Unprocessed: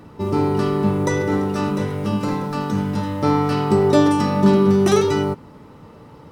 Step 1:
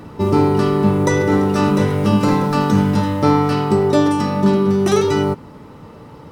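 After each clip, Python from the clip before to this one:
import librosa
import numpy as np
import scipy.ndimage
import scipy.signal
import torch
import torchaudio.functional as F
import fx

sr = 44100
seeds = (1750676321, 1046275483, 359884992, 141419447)

y = fx.rider(x, sr, range_db=10, speed_s=0.5)
y = y * 10.0 ** (3.0 / 20.0)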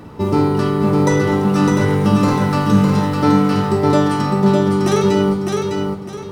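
y = fx.doubler(x, sr, ms=47.0, db=-12.5)
y = fx.echo_feedback(y, sr, ms=606, feedback_pct=31, wet_db=-4)
y = y * 10.0 ** (-1.0 / 20.0)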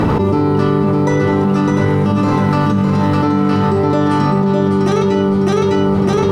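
y = fx.lowpass(x, sr, hz=3000.0, slope=6)
y = fx.env_flatten(y, sr, amount_pct=100)
y = y * 10.0 ** (-4.5 / 20.0)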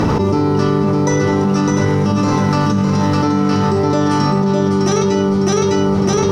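y = fx.peak_eq(x, sr, hz=5700.0, db=13.0, octaves=0.55)
y = y * 10.0 ** (-1.0 / 20.0)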